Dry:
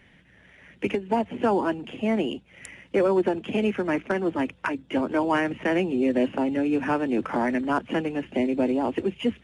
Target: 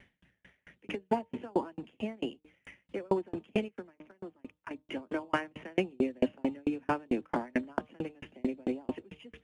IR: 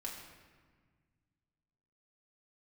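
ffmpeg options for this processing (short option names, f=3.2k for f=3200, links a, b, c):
-filter_complex "[0:a]asettb=1/sr,asplit=3[a][b][c];[a]atrim=end=3.684[d];[b]atrim=start=3.68:end=4.71,asetpts=PTS-STARTPTS,afade=t=in:d=0.004:c=qsin,afade=t=out:st=1.026:d=0.004:c=qsin,acompressor=threshold=-37dB:ratio=4[e];[c]atrim=start=4.706[f];[d][e]acrossfade=d=0.004:c1=hsin:c2=qsin[g];[g][f]acrossfade=d=0.004:c1=qsin:c2=hsin,bandreject=f=152.3:t=h:w=4,bandreject=f=304.6:t=h:w=4,bandreject=f=456.9:t=h:w=4,bandreject=f=609.2:t=h:w=4,bandreject=f=761.5:t=h:w=4,bandreject=f=913.8:t=h:w=4,bandreject=f=1.0661k:t=h:w=4,bandreject=f=1.2184k:t=h:w=4,aeval=exprs='val(0)*pow(10,-39*if(lt(mod(4.5*n/s,1),2*abs(4.5)/1000),1-mod(4.5*n/s,1)/(2*abs(4.5)/1000),(mod(4.5*n/s,1)-2*abs(4.5)/1000)/(1-2*abs(4.5)/1000))/20)':c=same"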